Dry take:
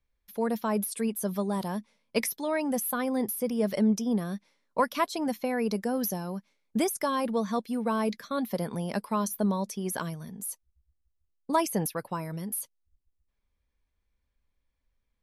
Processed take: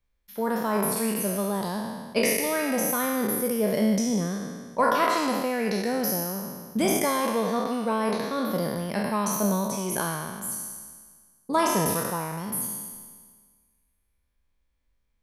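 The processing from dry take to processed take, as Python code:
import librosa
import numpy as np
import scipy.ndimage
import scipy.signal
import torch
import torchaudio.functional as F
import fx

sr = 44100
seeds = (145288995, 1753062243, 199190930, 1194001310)

y = fx.spec_trails(x, sr, decay_s=1.61)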